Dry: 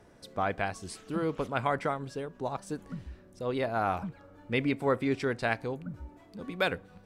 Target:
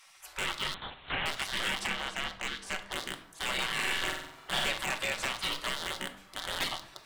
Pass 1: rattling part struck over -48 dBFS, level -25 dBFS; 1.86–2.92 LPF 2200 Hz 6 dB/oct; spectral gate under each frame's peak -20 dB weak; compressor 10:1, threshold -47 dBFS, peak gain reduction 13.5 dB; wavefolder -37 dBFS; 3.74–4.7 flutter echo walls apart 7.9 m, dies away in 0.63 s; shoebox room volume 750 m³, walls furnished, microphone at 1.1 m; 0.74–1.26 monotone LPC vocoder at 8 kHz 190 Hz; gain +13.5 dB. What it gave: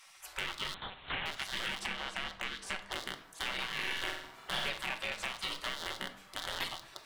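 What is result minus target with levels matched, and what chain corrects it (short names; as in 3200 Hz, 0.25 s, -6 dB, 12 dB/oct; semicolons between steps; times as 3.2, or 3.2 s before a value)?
compressor: peak gain reduction +7 dB
rattling part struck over -48 dBFS, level -25 dBFS; 1.86–2.92 LPF 2200 Hz 6 dB/oct; spectral gate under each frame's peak -20 dB weak; compressor 10:1, threshold -39.5 dBFS, peak gain reduction 7 dB; wavefolder -37 dBFS; 3.74–4.7 flutter echo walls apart 7.9 m, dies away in 0.63 s; shoebox room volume 750 m³, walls furnished, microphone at 1.1 m; 0.74–1.26 monotone LPC vocoder at 8 kHz 190 Hz; gain +13.5 dB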